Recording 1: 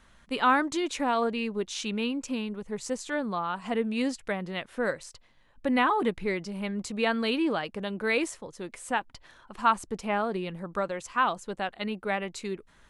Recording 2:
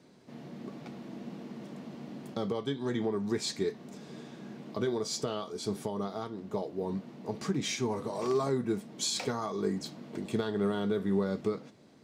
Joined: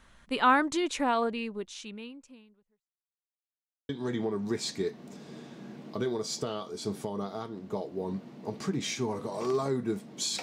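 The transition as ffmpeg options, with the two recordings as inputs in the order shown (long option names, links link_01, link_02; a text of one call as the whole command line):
ffmpeg -i cue0.wav -i cue1.wav -filter_complex "[0:a]apad=whole_dur=10.42,atrim=end=10.42,asplit=2[link_01][link_02];[link_01]atrim=end=2.9,asetpts=PTS-STARTPTS,afade=type=out:start_time=1.05:duration=1.85:curve=qua[link_03];[link_02]atrim=start=2.9:end=3.89,asetpts=PTS-STARTPTS,volume=0[link_04];[1:a]atrim=start=2.7:end=9.23,asetpts=PTS-STARTPTS,afade=type=in:duration=0.004:curve=hsin[link_05];[link_03][link_04][link_05]concat=n=3:v=0:a=1" out.wav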